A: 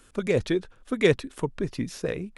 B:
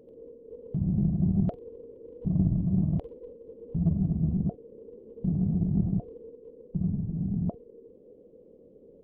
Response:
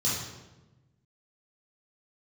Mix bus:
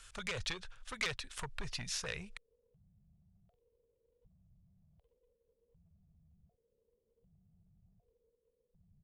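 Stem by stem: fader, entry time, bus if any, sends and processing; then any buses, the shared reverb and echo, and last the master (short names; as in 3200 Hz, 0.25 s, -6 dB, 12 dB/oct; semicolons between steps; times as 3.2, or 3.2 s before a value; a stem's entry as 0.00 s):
-5.0 dB, 0.00 s, no send, LPF 7700 Hz 12 dB/oct; compressor 4:1, threshold -26 dBFS, peak gain reduction 10.5 dB; sine folder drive 7 dB, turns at -15 dBFS
-12.0 dB, 2.00 s, no send, compressor, threshold -28 dBFS, peak gain reduction 9 dB; limiter -36.5 dBFS, peak gain reduction 15.5 dB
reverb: off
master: passive tone stack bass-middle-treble 10-0-10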